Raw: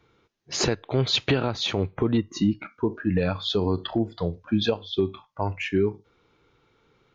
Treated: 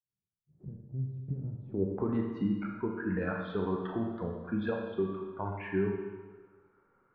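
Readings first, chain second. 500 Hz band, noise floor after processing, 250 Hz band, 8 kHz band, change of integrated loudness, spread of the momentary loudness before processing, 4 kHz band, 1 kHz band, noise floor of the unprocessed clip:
−8.0 dB, below −85 dBFS, −7.0 dB, can't be measured, −8.5 dB, 6 LU, −29.0 dB, −7.5 dB, −67 dBFS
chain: fade in at the beginning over 1.77 s
low-pass filter 2,700 Hz 6 dB per octave
low-pass that shuts in the quiet parts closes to 2,000 Hz, open at −21 dBFS
low-shelf EQ 110 Hz −4 dB
tuned comb filter 190 Hz, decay 0.57 s, harmonics all, mix 70%
low-pass filter sweep 150 Hz → 1,500 Hz, 0:01.58–0:02.15
four-comb reverb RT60 1.3 s, combs from 27 ms, DRR 1.5 dB
dynamic equaliser 680 Hz, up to −3 dB, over −45 dBFS, Q 1.6

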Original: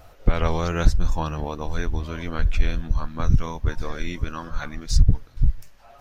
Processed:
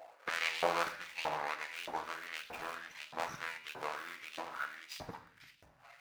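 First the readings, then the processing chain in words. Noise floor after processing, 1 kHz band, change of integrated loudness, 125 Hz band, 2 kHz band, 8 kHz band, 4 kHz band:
−65 dBFS, −5.5 dB, −13.0 dB, −36.0 dB, −3.0 dB, can't be measured, −5.5 dB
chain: running median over 41 samples
rectangular room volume 670 cubic metres, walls mixed, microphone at 0.66 metres
auto-filter high-pass saw up 1.6 Hz 700–3,100 Hz
level +1 dB

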